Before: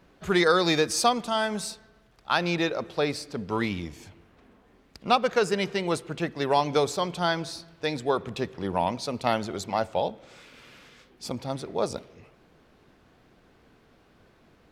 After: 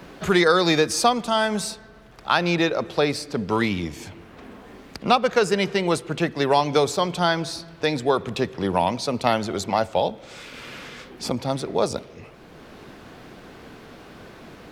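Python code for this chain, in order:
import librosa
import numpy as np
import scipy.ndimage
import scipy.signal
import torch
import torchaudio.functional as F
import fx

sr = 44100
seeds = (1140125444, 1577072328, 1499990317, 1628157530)

y = fx.band_squash(x, sr, depth_pct=40)
y = F.gain(torch.from_numpy(y), 5.0).numpy()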